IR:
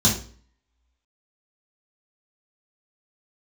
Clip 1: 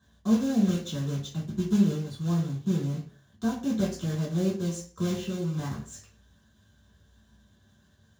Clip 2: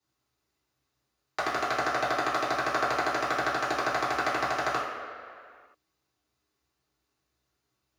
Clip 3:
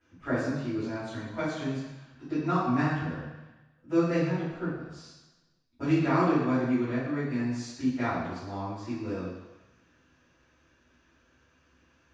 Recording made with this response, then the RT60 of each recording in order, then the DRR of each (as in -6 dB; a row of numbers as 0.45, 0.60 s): 1; 0.45, 2.1, 1.1 s; -5.5, -9.0, -14.5 dB